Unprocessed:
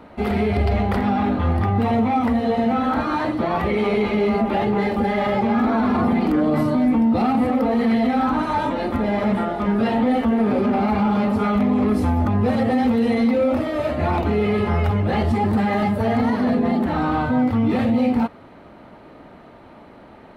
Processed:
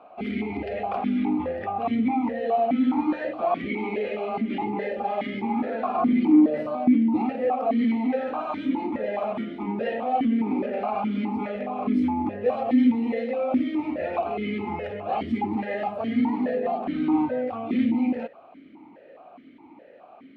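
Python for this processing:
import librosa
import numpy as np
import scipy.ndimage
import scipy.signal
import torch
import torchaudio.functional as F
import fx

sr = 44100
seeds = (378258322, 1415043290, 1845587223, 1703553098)

y = fx.vowel_held(x, sr, hz=4.8)
y = F.gain(torch.from_numpy(y), 5.5).numpy()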